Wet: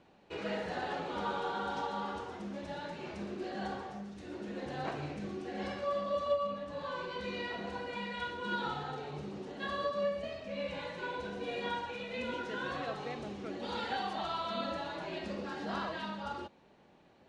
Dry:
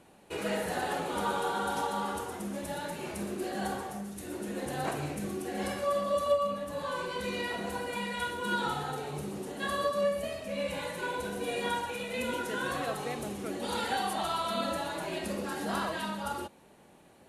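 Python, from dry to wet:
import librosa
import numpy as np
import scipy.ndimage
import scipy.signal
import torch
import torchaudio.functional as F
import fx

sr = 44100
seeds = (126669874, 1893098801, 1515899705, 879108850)

y = scipy.signal.sosfilt(scipy.signal.butter(4, 5400.0, 'lowpass', fs=sr, output='sos'), x)
y = y * librosa.db_to_amplitude(-4.5)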